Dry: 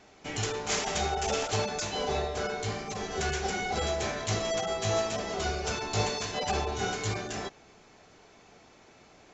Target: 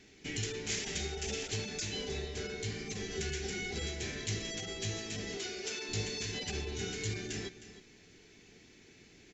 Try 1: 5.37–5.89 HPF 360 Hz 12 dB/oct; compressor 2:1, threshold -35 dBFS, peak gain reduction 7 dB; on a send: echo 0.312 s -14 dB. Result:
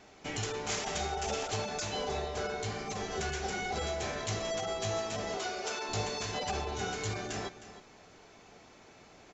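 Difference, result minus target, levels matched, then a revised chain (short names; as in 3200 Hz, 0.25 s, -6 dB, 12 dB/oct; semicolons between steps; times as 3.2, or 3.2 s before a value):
1000 Hz band +13.0 dB
5.37–5.89 HPF 360 Hz 12 dB/oct; compressor 2:1, threshold -35 dBFS, peak gain reduction 7 dB; band shelf 860 Hz -15.5 dB 1.6 oct; on a send: echo 0.312 s -14 dB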